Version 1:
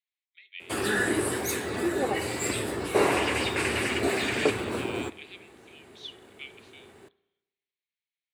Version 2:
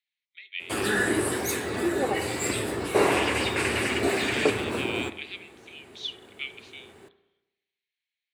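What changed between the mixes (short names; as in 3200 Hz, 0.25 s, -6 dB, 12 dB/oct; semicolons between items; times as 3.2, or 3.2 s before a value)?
speech +7.5 dB; background: send +8.5 dB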